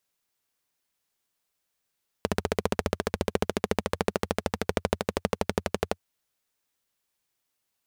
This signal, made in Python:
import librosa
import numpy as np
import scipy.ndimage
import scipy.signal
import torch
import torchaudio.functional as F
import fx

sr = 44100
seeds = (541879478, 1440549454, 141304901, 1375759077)

y = fx.engine_single_rev(sr, seeds[0], length_s=3.75, rpm=1800, resonances_hz=(88.0, 200.0, 420.0), end_rpm=1400)